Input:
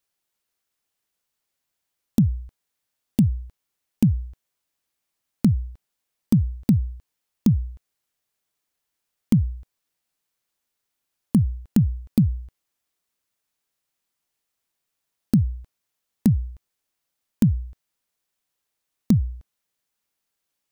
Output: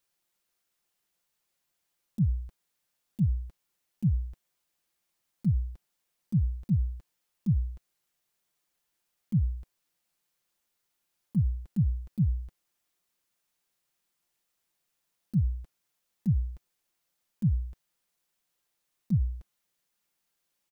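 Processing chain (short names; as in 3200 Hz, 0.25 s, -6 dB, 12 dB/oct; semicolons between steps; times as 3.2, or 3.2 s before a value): comb 5.7 ms, depth 35%; auto swell 0.107 s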